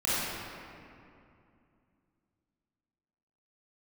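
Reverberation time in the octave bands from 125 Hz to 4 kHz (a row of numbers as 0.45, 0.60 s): 3.3, 3.3, 2.6, 2.5, 2.2, 1.5 s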